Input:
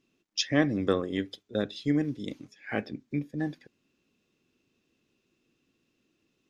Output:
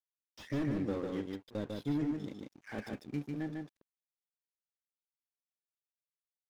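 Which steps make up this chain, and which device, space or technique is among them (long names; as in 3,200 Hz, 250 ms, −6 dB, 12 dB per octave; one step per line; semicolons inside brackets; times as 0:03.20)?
early transistor amplifier (dead-zone distortion −49 dBFS; slew-rate limiting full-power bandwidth 21 Hz)
0:02.78–0:03.31: high-shelf EQ 4,400 Hz +9 dB
single-tap delay 148 ms −3.5 dB
level −6 dB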